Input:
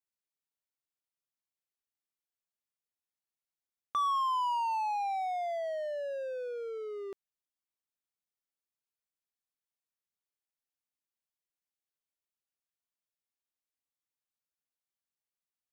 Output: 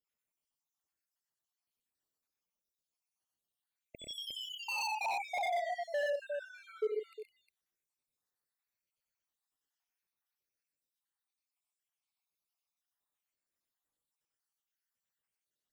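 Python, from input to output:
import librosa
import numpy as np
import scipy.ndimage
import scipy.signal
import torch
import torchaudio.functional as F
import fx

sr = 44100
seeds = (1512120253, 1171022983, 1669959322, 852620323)

y = fx.spec_dropout(x, sr, seeds[0], share_pct=79)
y = fx.echo_multitap(y, sr, ms=(69, 93, 122, 159, 357), db=(-9.5, -3.5, -3.5, -13.0, -9.0))
y = 10.0 ** (-36.5 / 20.0) * (np.abs((y / 10.0 ** (-36.5 / 20.0) + 3.0) % 4.0 - 2.0) - 1.0)
y = fx.low_shelf(y, sr, hz=420.0, db=9.0, at=(4.97, 7.04))
y = y * 10.0 ** (5.5 / 20.0)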